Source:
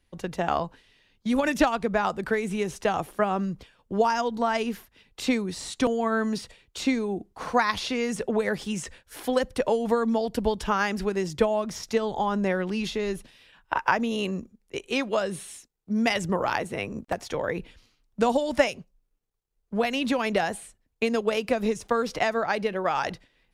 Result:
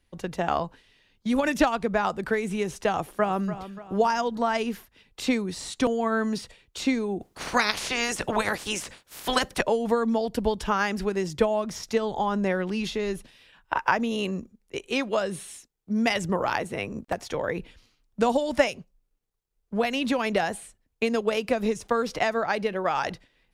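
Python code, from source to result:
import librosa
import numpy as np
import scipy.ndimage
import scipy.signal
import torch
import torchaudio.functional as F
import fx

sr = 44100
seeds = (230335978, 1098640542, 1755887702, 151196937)

y = fx.echo_throw(x, sr, start_s=2.94, length_s=0.55, ms=290, feedback_pct=45, wet_db=-12.5)
y = fx.spec_clip(y, sr, under_db=21, at=(7.2, 9.61), fade=0.02)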